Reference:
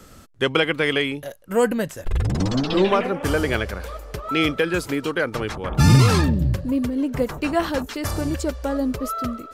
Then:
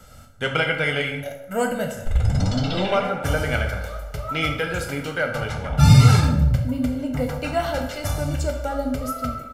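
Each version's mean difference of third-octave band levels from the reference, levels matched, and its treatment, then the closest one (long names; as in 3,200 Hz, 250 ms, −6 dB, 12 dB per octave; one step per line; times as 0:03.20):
4.0 dB: comb filter 1.4 ms, depth 72%
dense smooth reverb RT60 0.88 s, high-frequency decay 0.7×, DRR 2.5 dB
level −4 dB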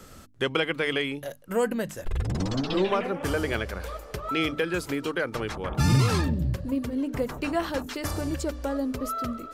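2.0 dB: mains-hum notches 50/100/150/200/250/300 Hz
in parallel at +2.5 dB: downward compressor, threshold −29 dBFS, peak gain reduction 17.5 dB
on the sum: level −8.5 dB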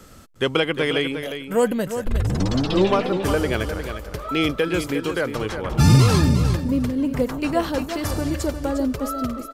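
3.0 dB: dynamic equaliser 1,800 Hz, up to −4 dB, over −33 dBFS, Q 1.3
on a send: repeating echo 355 ms, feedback 17%, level −9 dB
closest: second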